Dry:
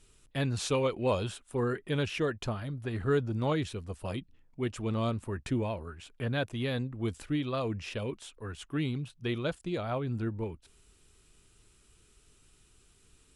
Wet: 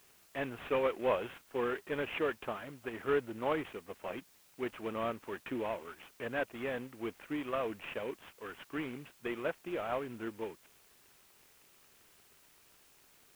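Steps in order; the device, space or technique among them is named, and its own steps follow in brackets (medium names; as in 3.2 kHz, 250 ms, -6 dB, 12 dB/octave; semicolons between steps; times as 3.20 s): army field radio (band-pass 370–3300 Hz; CVSD coder 16 kbps; white noise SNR 26 dB)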